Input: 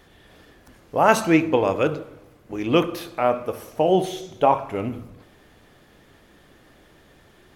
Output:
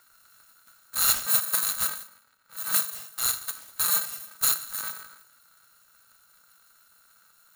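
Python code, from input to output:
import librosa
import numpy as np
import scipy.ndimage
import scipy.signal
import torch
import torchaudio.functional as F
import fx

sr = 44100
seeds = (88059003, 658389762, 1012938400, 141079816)

p1 = fx.bit_reversed(x, sr, seeds[0], block=128)
p2 = fx.bass_treble(p1, sr, bass_db=-4, treble_db=-13, at=(2.03, 2.56), fade=0.02)
p3 = p2 + fx.echo_single(p2, sr, ms=201, db=-23.5, dry=0)
p4 = p3 * np.sign(np.sin(2.0 * np.pi * 1400.0 * np.arange(len(p3)) / sr))
y = F.gain(torch.from_numpy(p4), -6.5).numpy()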